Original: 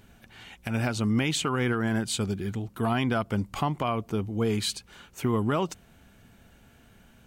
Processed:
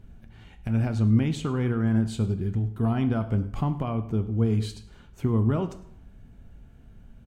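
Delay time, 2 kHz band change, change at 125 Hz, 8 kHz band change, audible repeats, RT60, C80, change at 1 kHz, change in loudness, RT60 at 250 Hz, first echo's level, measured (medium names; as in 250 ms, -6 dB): 103 ms, -8.5 dB, +6.0 dB, under -10 dB, 1, 0.65 s, 15.0 dB, -6.0 dB, +2.0 dB, 0.60 s, -19.5 dB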